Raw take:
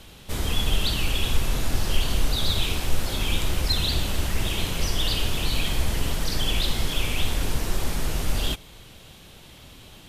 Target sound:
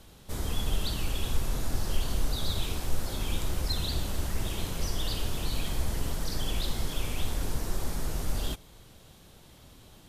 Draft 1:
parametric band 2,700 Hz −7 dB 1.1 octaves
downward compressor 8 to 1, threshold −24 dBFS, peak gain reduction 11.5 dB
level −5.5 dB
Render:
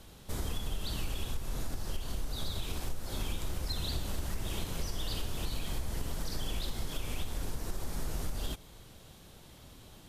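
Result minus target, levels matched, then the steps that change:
downward compressor: peak gain reduction +11.5 dB
remove: downward compressor 8 to 1, threshold −24 dBFS, peak gain reduction 11.5 dB

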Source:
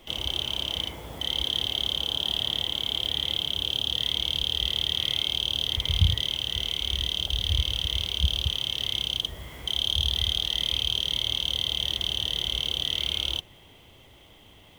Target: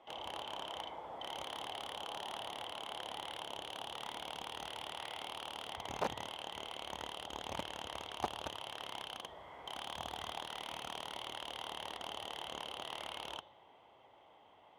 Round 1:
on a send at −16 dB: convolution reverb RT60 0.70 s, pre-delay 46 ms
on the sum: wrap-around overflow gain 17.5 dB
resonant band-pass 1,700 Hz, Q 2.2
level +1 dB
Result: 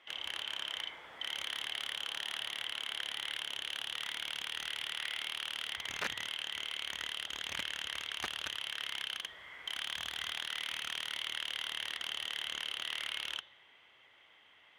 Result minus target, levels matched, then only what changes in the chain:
1,000 Hz band −12.0 dB
change: resonant band-pass 840 Hz, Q 2.2

